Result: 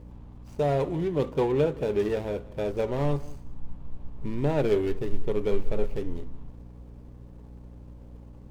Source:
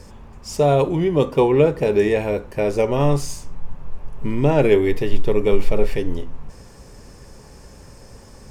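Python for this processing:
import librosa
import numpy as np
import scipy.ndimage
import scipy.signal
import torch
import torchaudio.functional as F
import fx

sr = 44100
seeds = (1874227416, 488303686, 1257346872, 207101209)

y = scipy.signal.medfilt(x, 25)
y = fx.add_hum(y, sr, base_hz=60, snr_db=19)
y = y + 10.0 ** (-21.0 / 20.0) * np.pad(y, (int(191 * sr / 1000.0), 0))[:len(y)]
y = F.gain(torch.from_numpy(y), -8.5).numpy()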